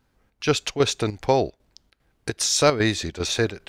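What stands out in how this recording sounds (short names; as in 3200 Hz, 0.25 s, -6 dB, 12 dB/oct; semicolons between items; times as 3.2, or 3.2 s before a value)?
chopped level 2.5 Hz, depth 60%, duty 75%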